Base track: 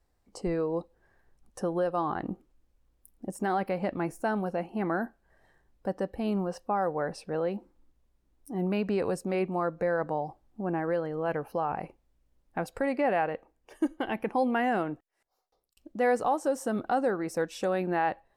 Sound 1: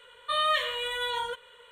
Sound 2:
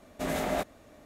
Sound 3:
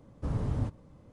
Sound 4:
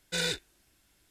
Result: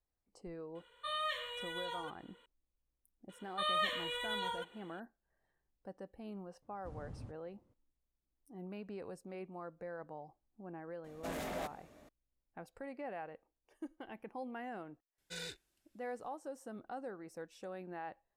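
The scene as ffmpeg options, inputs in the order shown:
-filter_complex "[1:a]asplit=2[a][b];[0:a]volume=-17.5dB[c];[2:a]asoftclip=type=tanh:threshold=-31dB[d];[a]atrim=end=1.71,asetpts=PTS-STARTPTS,volume=-12dB,afade=t=in:d=0.004:c=hsin,afade=t=out:st=1.706:d=0.004:c=hsin,adelay=750[e];[b]atrim=end=1.71,asetpts=PTS-STARTPTS,volume=-8dB,afade=t=in:d=0.004:c=hsin,afade=t=out:st=1.706:d=0.004:c=hsin,adelay=145089S[f];[3:a]atrim=end=1.12,asetpts=PTS-STARTPTS,volume=-18dB,afade=t=in:d=0.004:c=hsin,afade=t=out:st=1.116:d=0.004:c=hsin,adelay=6620[g];[d]atrim=end=1.05,asetpts=PTS-STARTPTS,volume=-6dB,afade=t=in:d=0.004:c=hsin,afade=t=out:st=1.046:d=0.004:c=hsin,adelay=11040[h];[4:a]atrim=end=1.1,asetpts=PTS-STARTPTS,volume=-14.5dB,afade=t=in:d=0.004:c=hsin,afade=t=out:st=1.096:d=0.004:c=hsin,adelay=15180[i];[c][e][f][g][h][i]amix=inputs=6:normalize=0"

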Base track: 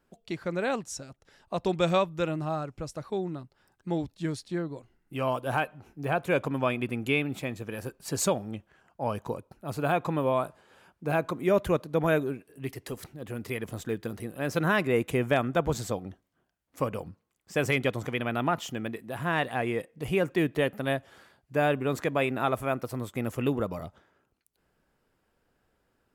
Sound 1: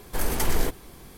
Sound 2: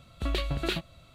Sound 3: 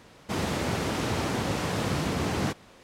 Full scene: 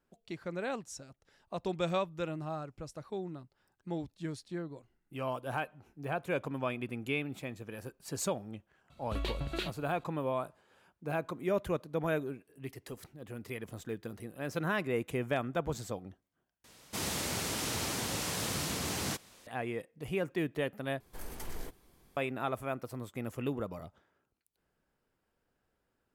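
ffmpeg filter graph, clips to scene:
-filter_complex "[0:a]volume=-7.5dB[a];[3:a]crystalizer=i=4.5:c=0[b];[a]asplit=3[c][d][e];[c]atrim=end=16.644[f];[b]atrim=end=2.83,asetpts=PTS-STARTPTS,volume=-10dB[g];[d]atrim=start=19.466:end=21.004[h];[1:a]atrim=end=1.17,asetpts=PTS-STARTPTS,volume=-18dB[i];[e]atrim=start=22.166[j];[2:a]atrim=end=1.14,asetpts=PTS-STARTPTS,volume=-6.5dB,afade=t=in:d=0.004:c=hsin,afade=t=out:st=1.136:d=0.004:c=hsin,adelay=392490S[k];[f][g]acrossfade=d=0.004:c1=hsin:c2=hsin[l];[l][h]acrossfade=d=0.004:c1=hsin:c2=hsin[m];[m][i]acrossfade=d=0.004:c1=hsin:c2=hsin[n];[n][j]acrossfade=d=0.004:c1=hsin:c2=hsin[o];[o][k]amix=inputs=2:normalize=0"

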